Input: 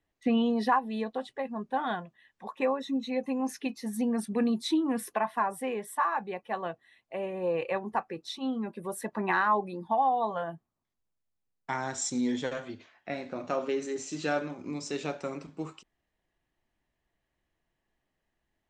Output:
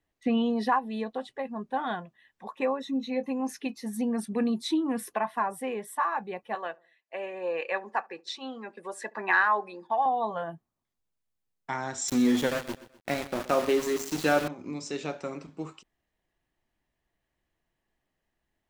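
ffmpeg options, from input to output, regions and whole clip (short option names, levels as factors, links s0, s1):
-filter_complex "[0:a]asettb=1/sr,asplit=3[s0][s1][s2];[s0]atrim=end=2.914[s3];[s1]atrim=start=2.91:end=3.31,asetpts=PTS-STARTPTS,afade=t=in:d=0.004:c=qsin,afade=t=out:st=0.396:d=0.004:c=qsin,equalizer=f=8300:w=3.7:g=-9.5,asplit=2[s4][s5];[s5]adelay=23,volume=0.211[s6];[s4][s6]amix=inputs=2:normalize=0,atrim=end_sample=17640[s7];[s2]atrim=start=3.306[s8];[s3][s7]acrossfade=d=0.004:c1=hsin:c2=qsin[s9];[s9][s8]acrossfade=d=0.004:c1=qsin:c2=hsin,asettb=1/sr,asplit=3[s10][s11][s12];[s10]atrim=end=6.554[s13];[s11]atrim=start=6.55:end=10.06,asetpts=PTS-STARTPTS,afade=t=in:d=0.004:c=qsin,afade=t=out:st=3.506:d=0.004:c=qsin,agate=range=0.316:threshold=0.00355:ratio=16:release=100:detection=peak,highpass=420,equalizer=f=1700:t=q:w=4:g=8,equalizer=f=2500:t=q:w=4:g=4,equalizer=f=4800:t=q:w=4:g=5,equalizer=f=7100:t=q:w=4:g=4,lowpass=f=8400:w=0.5412,lowpass=f=8400:w=1.3066,asplit=2[s14][s15];[s15]adelay=71,lowpass=f=850:p=1,volume=0.0794,asplit=2[s16][s17];[s17]adelay=71,lowpass=f=850:p=1,volume=0.49,asplit=2[s18][s19];[s19]adelay=71,lowpass=f=850:p=1,volume=0.49[s20];[s14][s16][s18][s20]amix=inputs=4:normalize=0,atrim=end_sample=154791[s21];[s12]atrim=start=10.056[s22];[s13][s21]acrossfade=d=0.004:c1=hsin:c2=qsin[s23];[s23][s22]acrossfade=d=0.004:c1=qsin:c2=hsin,asettb=1/sr,asplit=3[s24][s25][s26];[s24]atrim=end=12.084[s27];[s25]atrim=start=12.08:end=14.48,asetpts=PTS-STARTPTS,afade=t=in:d=0.004:c=qsin,afade=t=out:st=2.396:d=0.004:c=qsin,acontrast=44,aeval=exprs='val(0)*gte(abs(val(0)),0.0266)':c=same,aecho=1:1:126|252|378:0.158|0.0602|0.0229,atrim=end_sample=105840[s28];[s26]atrim=start=14.476[s29];[s27][s28]acrossfade=d=0.004:c1=hsin:c2=qsin[s30];[s30][s29]acrossfade=d=0.004:c1=qsin:c2=hsin"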